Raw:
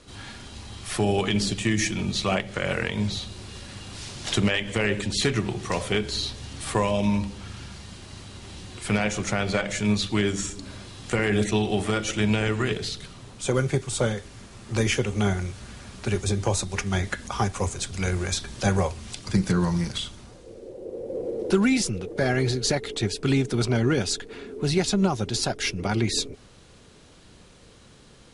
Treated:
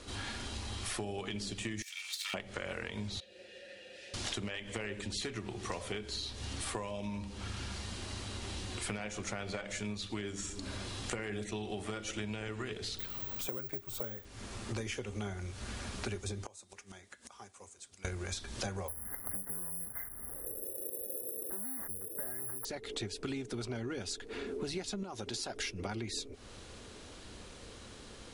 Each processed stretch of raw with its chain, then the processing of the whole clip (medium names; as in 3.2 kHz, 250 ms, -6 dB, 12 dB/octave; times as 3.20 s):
1.82–2.34 s: comb filter that takes the minimum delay 2.2 ms + Bessel high-pass 2.6 kHz, order 4 + compressor with a negative ratio -34 dBFS, ratio -0.5
3.20–4.14 s: vowel filter e + treble shelf 5.8 kHz +8 dB + comb 5.6 ms, depth 47%
12.99–14.25 s: treble shelf 5 kHz -9 dB + careless resampling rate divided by 2×, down none, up zero stuff + tape noise reduction on one side only encoder only
16.46–18.05 s: high-pass 280 Hz 6 dB/octave + peaking EQ 8.2 kHz +7 dB 0.9 oct + inverted gate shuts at -25 dBFS, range -27 dB
18.88–22.65 s: hard clipper -23.5 dBFS + careless resampling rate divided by 8×, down none, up zero stuff + brick-wall FIR band-stop 2.1–9.8 kHz
25.03–25.56 s: bass shelf 150 Hz -8.5 dB + compression 2.5:1, threshold -30 dBFS
whole clip: peaking EQ 150 Hz -14 dB 0.35 oct; compression 10:1, threshold -38 dBFS; trim +2 dB